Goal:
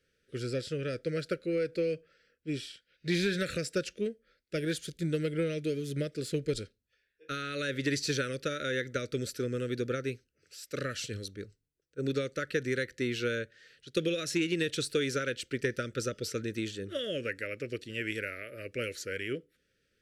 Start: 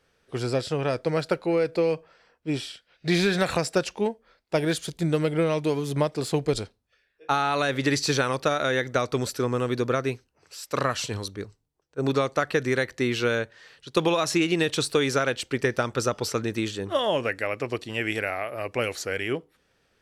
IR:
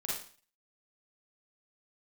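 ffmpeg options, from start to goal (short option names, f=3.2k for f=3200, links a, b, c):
-af "asuperstop=centerf=880:order=8:qfactor=1.1,aeval=exprs='0.355*(cos(1*acos(clip(val(0)/0.355,-1,1)))-cos(1*PI/2))+0.02*(cos(3*acos(clip(val(0)/0.355,-1,1)))-cos(3*PI/2))':c=same,volume=-5.5dB"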